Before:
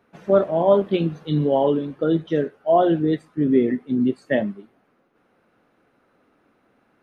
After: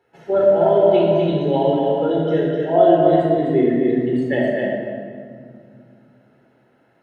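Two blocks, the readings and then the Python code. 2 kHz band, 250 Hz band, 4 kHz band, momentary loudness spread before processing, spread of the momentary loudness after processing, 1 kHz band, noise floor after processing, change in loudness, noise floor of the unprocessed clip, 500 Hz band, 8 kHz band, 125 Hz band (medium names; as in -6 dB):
+4.0 dB, +2.0 dB, +3.0 dB, 6 LU, 9 LU, +4.0 dB, -59 dBFS, +3.5 dB, -64 dBFS, +5.0 dB, no reading, +2.5 dB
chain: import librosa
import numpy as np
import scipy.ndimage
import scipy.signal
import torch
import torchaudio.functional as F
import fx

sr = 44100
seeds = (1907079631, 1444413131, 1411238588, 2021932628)

p1 = fx.peak_eq(x, sr, hz=290.0, db=-6.0, octaves=0.98)
p2 = fx.hum_notches(p1, sr, base_hz=50, count=3)
p3 = fx.notch_comb(p2, sr, f0_hz=1200.0)
p4 = fx.small_body(p3, sr, hz=(350.0, 660.0), ring_ms=95, db=7)
p5 = p4 + fx.echo_single(p4, sr, ms=254, db=-4.0, dry=0)
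p6 = fx.room_shoebox(p5, sr, seeds[0], volume_m3=4000.0, walls='mixed', distance_m=4.1)
y = p6 * 10.0 ** (-2.5 / 20.0)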